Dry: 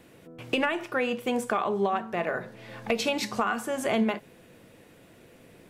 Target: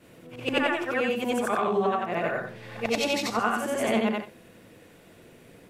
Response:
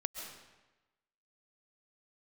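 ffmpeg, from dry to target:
-af "afftfilt=real='re':imag='-im':win_size=8192:overlap=0.75,volume=6dB"

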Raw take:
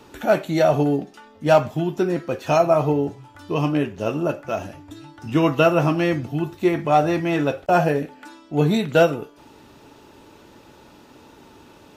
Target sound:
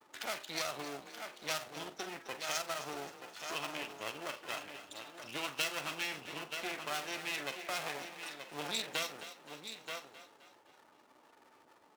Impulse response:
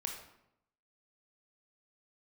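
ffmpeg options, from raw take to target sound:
-filter_complex "[0:a]acompressor=threshold=-34dB:ratio=1.5,afftfilt=real='re*gte(hypot(re,im),0.00891)':imag='im*gte(hypot(re,im),0.00891)':win_size=1024:overlap=0.75,asplit=2[link_01][link_02];[link_02]aecho=0:1:928:0.335[link_03];[link_01][link_03]amix=inputs=2:normalize=0,aeval=exprs='max(val(0),0)':channel_layout=same,agate=range=-33dB:threshold=-55dB:ratio=3:detection=peak,aderivative,acrossover=split=220|3000[link_04][link_05][link_06];[link_05]acompressor=threshold=-47dB:ratio=8[link_07];[link_04][link_07][link_06]amix=inputs=3:normalize=0,asplit=2[link_08][link_09];[link_09]adelay=44,volume=-13.5dB[link_10];[link_08][link_10]amix=inputs=2:normalize=0,asplit=2[link_11][link_12];[link_12]asplit=5[link_13][link_14][link_15][link_16][link_17];[link_13]adelay=262,afreqshift=31,volume=-13dB[link_18];[link_14]adelay=524,afreqshift=62,volume=-19.6dB[link_19];[link_15]adelay=786,afreqshift=93,volume=-26.1dB[link_20];[link_16]adelay=1048,afreqshift=124,volume=-32.7dB[link_21];[link_17]adelay=1310,afreqshift=155,volume=-39.2dB[link_22];[link_18][link_19][link_20][link_21][link_22]amix=inputs=5:normalize=0[link_23];[link_11][link_23]amix=inputs=2:normalize=0,volume=11dB"

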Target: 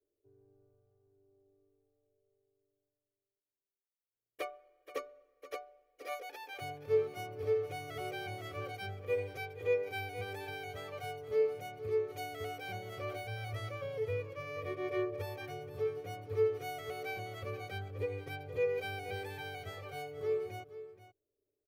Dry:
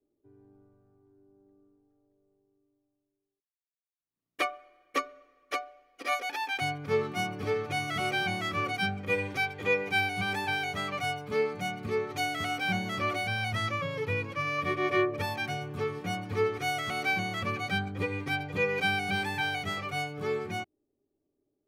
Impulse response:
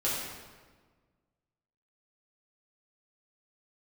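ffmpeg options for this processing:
-filter_complex "[0:a]firequalizer=gain_entry='entry(120,0);entry(180,-19);entry(450,6);entry(880,-9);entry(8800,-6);entry(14000,3)':delay=0.05:min_phase=1,asplit=2[link_01][link_02];[link_02]aecho=0:1:476:0.2[link_03];[link_01][link_03]amix=inputs=2:normalize=0,volume=-6dB"

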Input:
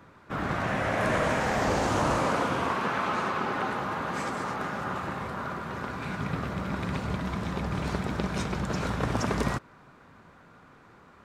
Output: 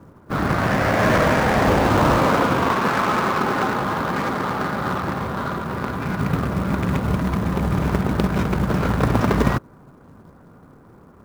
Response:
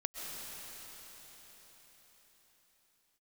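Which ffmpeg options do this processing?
-filter_complex "[0:a]adynamicsmooth=sensitivity=4.5:basefreq=750,asplit=2[link_01][link_02];[link_02]asuperstop=centerf=1500:order=4:qfactor=0.55[link_03];[1:a]atrim=start_sample=2205,atrim=end_sample=4410,lowpass=1400[link_04];[link_03][link_04]afir=irnorm=-1:irlink=0,volume=-11.5dB[link_05];[link_01][link_05]amix=inputs=2:normalize=0,acrusher=bits=6:mode=log:mix=0:aa=0.000001,volume=9dB"

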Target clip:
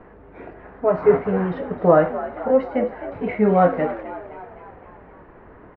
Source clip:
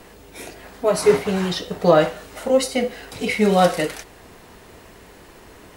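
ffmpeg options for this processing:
ffmpeg -i in.wav -filter_complex "[0:a]lowpass=frequency=1700:width=0.5412,lowpass=frequency=1700:width=1.3066,asplit=7[link_01][link_02][link_03][link_04][link_05][link_06][link_07];[link_02]adelay=259,afreqshift=66,volume=-14dB[link_08];[link_03]adelay=518,afreqshift=132,volume=-19dB[link_09];[link_04]adelay=777,afreqshift=198,volume=-24.1dB[link_10];[link_05]adelay=1036,afreqshift=264,volume=-29.1dB[link_11];[link_06]adelay=1295,afreqshift=330,volume=-34.1dB[link_12];[link_07]adelay=1554,afreqshift=396,volume=-39.2dB[link_13];[link_01][link_08][link_09][link_10][link_11][link_12][link_13]amix=inputs=7:normalize=0" out.wav

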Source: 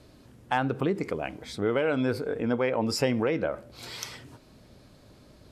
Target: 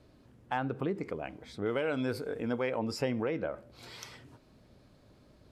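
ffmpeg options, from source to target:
ffmpeg -i in.wav -af "asetnsamples=nb_out_samples=441:pad=0,asendcmd='1.66 highshelf g 5.5;2.79 highshelf g -6',highshelf=frequency=3900:gain=-8,volume=-6dB" out.wav

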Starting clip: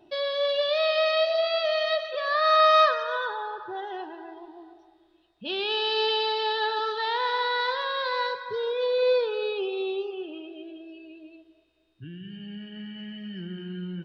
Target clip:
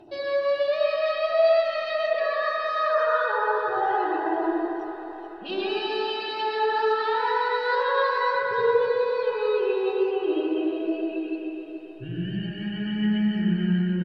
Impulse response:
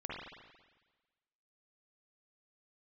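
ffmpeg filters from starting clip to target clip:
-filter_complex "[0:a]bandreject=frequency=3400:width=8.6,areverse,acompressor=threshold=-37dB:ratio=6,areverse,aphaser=in_gain=1:out_gain=1:delay=4.8:decay=0.44:speed=0.23:type=triangular,aecho=1:1:432|864|1296|1728|2160|2592:0.251|0.143|0.0816|0.0465|0.0265|0.0151[link_01];[1:a]atrim=start_sample=2205,asetrate=27342,aresample=44100[link_02];[link_01][link_02]afir=irnorm=-1:irlink=0,volume=9dB"

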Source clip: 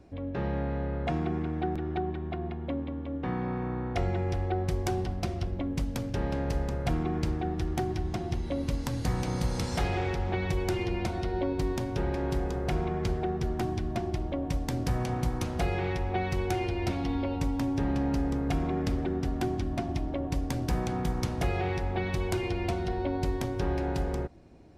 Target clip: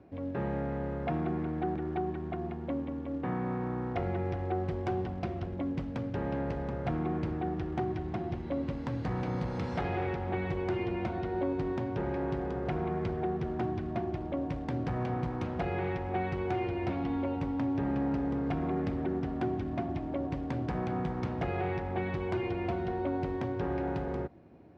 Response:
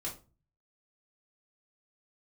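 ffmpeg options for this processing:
-af "acrusher=bits=6:mode=log:mix=0:aa=0.000001,asoftclip=type=tanh:threshold=-21.5dB,highpass=100,lowpass=2200"

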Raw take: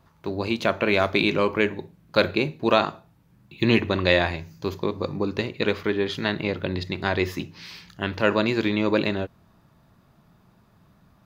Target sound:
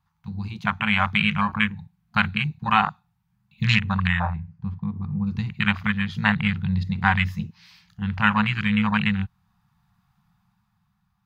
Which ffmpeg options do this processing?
ffmpeg -i in.wav -filter_complex "[0:a]dynaudnorm=framelen=100:gausssize=21:maxgain=9dB,asettb=1/sr,asplit=3[link_01][link_02][link_03];[link_01]atrim=end=4.074[link_04];[link_02]atrim=start=4.07:end=5.27,asetpts=PTS-STARTPTS,afade=type=in:duration=0.004:curve=qsin,afade=type=out:start_time=1.196:duration=0.004:curve=qsin,lowpass=1600[link_05];[link_03]atrim=start=5.266[link_06];[link_04][link_05]acrossfade=duration=0.004:curve1=hsin:curve2=qsin[link_07];[link_07][link_06]acrossfade=duration=0.004:curve1=qsin:curve2=hsin,afftfilt=real='re*(1-between(b*sr/4096,220,710))':imag='im*(1-between(b*sr/4096,220,710))':win_size=4096:overlap=0.75,afwtdn=0.0501,volume=3.5dB" out.wav

